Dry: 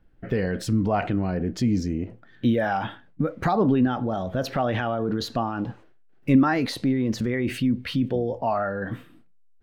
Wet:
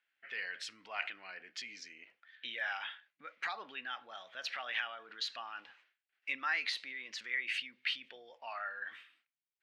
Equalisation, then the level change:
four-pole ladder band-pass 2,800 Hz, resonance 35%
+8.5 dB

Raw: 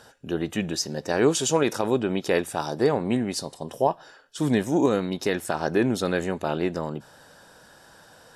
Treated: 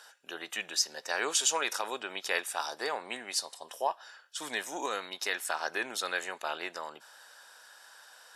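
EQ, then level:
high-pass filter 1,100 Hz 12 dB per octave
0.0 dB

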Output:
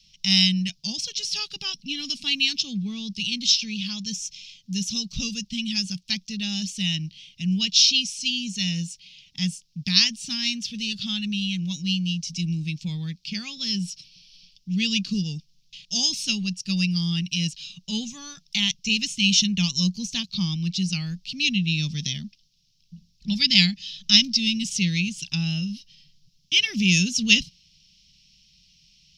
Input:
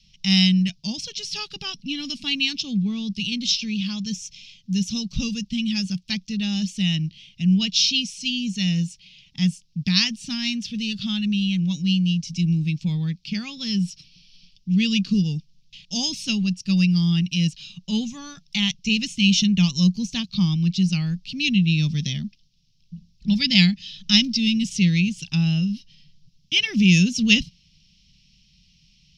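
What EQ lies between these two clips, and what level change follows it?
high-shelf EQ 2,600 Hz +11.5 dB
−6.0 dB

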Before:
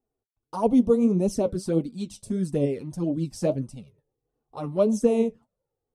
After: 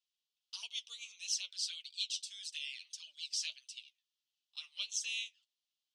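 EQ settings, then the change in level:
Chebyshev high-pass filter 3,000 Hz, order 4
high-frequency loss of the air 180 metres
+17.5 dB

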